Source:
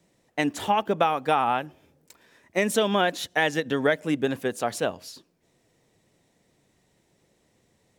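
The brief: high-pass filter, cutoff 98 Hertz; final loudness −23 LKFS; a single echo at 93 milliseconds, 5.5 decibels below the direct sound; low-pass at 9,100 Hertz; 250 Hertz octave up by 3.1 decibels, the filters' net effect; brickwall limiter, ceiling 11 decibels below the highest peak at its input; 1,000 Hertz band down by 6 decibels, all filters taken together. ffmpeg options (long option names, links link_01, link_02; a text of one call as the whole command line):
ffmpeg -i in.wav -af "highpass=98,lowpass=9100,equalizer=frequency=250:width_type=o:gain=4.5,equalizer=frequency=1000:width_type=o:gain=-9,alimiter=limit=-20dB:level=0:latency=1,aecho=1:1:93:0.531,volume=7dB" out.wav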